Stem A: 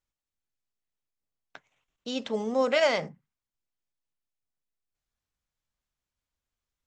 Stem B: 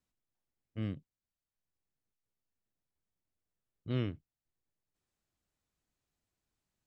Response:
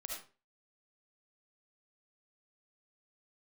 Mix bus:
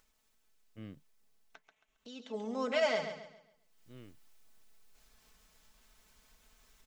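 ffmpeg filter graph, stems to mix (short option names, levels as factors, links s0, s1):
-filter_complex "[0:a]aecho=1:1:4.6:0.64,acompressor=mode=upward:threshold=0.0282:ratio=2.5,volume=0.355,afade=t=in:st=2.24:d=0.3:silence=0.375837,asplit=3[s0][s1][s2];[s1]volume=0.376[s3];[1:a]volume=0.398[s4];[s2]apad=whole_len=302797[s5];[s4][s5]sidechaincompress=threshold=0.00251:ratio=3:attack=16:release=1220[s6];[s3]aecho=0:1:136|272|408|544|680:1|0.34|0.116|0.0393|0.0134[s7];[s0][s6][s7]amix=inputs=3:normalize=0,equalizer=f=87:t=o:w=1.7:g=-5.5"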